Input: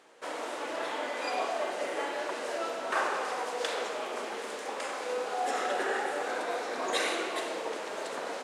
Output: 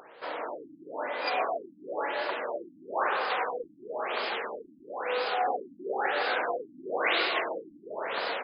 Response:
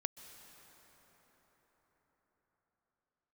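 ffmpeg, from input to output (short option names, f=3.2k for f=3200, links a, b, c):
-af "asetnsamples=n=441:p=0,asendcmd='1.26 highshelf g 3.5;3.3 highshelf g 11',highshelf=f=2k:g=-2.5,acompressor=mode=upward:threshold=-46dB:ratio=2.5,equalizer=f=250:w=1.2:g=-6,afftfilt=real='re*lt(b*sr/1024,320*pow(5200/320,0.5+0.5*sin(2*PI*1*pts/sr)))':imag='im*lt(b*sr/1024,320*pow(5200/320,0.5+0.5*sin(2*PI*1*pts/sr)))':win_size=1024:overlap=0.75,volume=3dB"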